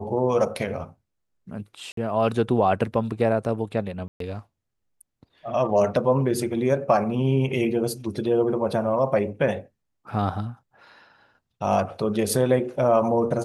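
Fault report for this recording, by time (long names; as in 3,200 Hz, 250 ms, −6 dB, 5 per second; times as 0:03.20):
0:01.92–0:01.97: drop-out 53 ms
0:04.08–0:04.20: drop-out 123 ms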